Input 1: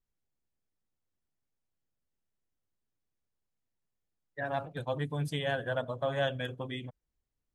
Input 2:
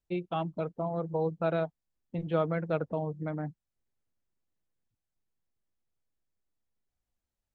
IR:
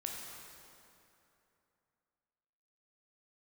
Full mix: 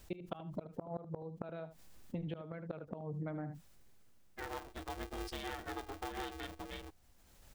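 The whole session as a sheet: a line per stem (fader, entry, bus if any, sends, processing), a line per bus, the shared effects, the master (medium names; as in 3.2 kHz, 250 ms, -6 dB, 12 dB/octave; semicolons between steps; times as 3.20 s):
-8.0 dB, 0.00 s, no send, no echo send, peaking EQ 5 kHz +14.5 dB 0.27 oct; polarity switched at an audio rate 200 Hz
+1.0 dB, 0.00 s, no send, echo send -14 dB, inverted gate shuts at -23 dBFS, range -28 dB; level flattener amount 50%; auto duck -14 dB, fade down 1.10 s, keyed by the first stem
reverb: none
echo: delay 75 ms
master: compression 6:1, threshold -38 dBFS, peak gain reduction 10.5 dB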